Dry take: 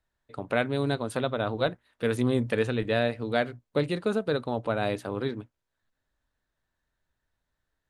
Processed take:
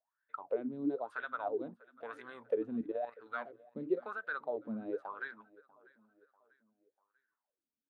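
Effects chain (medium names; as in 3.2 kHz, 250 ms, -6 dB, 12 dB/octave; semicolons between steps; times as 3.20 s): bass shelf 200 Hz -12 dB; in parallel at +1 dB: peak limiter -19.5 dBFS, peak gain reduction 9 dB; on the sum: wah-wah 1 Hz 220–1600 Hz, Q 11; 2.81–3.26 s: level held to a coarse grid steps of 12 dB; on a send: feedback delay 643 ms, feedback 46%, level -23.5 dB; on the sum: trim +1 dB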